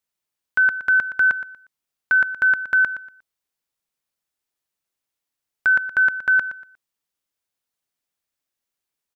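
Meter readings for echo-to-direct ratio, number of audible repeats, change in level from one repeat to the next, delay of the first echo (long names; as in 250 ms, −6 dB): −12.5 dB, 2, −11.5 dB, 119 ms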